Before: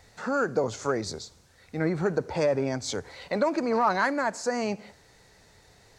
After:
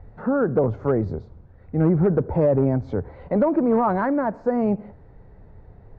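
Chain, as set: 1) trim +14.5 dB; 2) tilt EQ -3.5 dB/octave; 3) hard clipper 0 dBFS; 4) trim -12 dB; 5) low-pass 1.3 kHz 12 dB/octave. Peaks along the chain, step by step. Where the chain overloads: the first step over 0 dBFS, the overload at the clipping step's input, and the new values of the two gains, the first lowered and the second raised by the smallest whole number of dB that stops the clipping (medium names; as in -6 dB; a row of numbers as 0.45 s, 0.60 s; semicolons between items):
+2.0 dBFS, +5.0 dBFS, 0.0 dBFS, -12.0 dBFS, -11.5 dBFS; step 1, 5.0 dB; step 1 +9.5 dB, step 4 -7 dB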